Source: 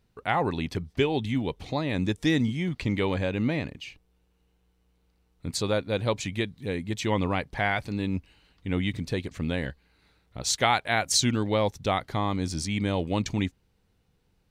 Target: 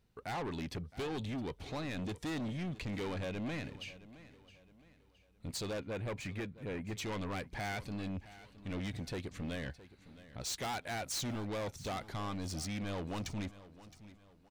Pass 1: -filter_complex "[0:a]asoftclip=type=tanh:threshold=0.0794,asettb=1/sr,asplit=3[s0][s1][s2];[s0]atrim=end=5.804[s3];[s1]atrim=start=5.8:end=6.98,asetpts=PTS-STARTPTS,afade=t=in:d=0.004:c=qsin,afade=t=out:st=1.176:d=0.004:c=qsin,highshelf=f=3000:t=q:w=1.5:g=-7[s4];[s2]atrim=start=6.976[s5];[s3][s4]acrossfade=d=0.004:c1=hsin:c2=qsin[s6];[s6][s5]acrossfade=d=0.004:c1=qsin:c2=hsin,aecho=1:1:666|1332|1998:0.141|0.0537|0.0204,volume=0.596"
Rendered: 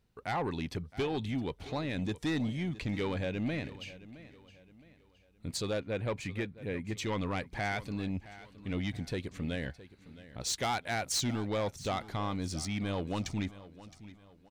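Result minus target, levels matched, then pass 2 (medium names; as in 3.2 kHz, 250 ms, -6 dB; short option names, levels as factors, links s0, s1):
saturation: distortion -6 dB
-filter_complex "[0:a]asoftclip=type=tanh:threshold=0.0282,asettb=1/sr,asplit=3[s0][s1][s2];[s0]atrim=end=5.804[s3];[s1]atrim=start=5.8:end=6.98,asetpts=PTS-STARTPTS,afade=t=in:d=0.004:c=qsin,afade=t=out:st=1.176:d=0.004:c=qsin,highshelf=f=3000:t=q:w=1.5:g=-7[s4];[s2]atrim=start=6.976[s5];[s3][s4]acrossfade=d=0.004:c1=hsin:c2=qsin[s6];[s6][s5]acrossfade=d=0.004:c1=qsin:c2=hsin,aecho=1:1:666|1332|1998:0.141|0.0537|0.0204,volume=0.596"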